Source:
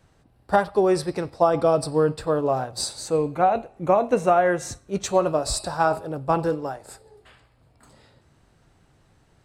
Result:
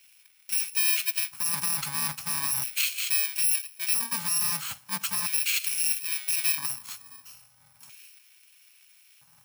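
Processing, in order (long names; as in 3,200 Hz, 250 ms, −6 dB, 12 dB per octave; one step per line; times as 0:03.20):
samples in bit-reversed order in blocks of 64 samples
dynamic equaliser 570 Hz, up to −4 dB, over −53 dBFS, Q 6.8
in parallel at +1 dB: downward compressor 5 to 1, threshold −35 dBFS, peak gain reduction 19 dB
on the sum: brickwall limiter −15.5 dBFS, peak gain reduction 11 dB
auto-filter high-pass square 0.38 Hz 280–2,500 Hz
bit-depth reduction 12 bits, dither none
Chebyshev band-stop filter 130–960 Hz, order 2
highs frequency-modulated by the lows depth 0.12 ms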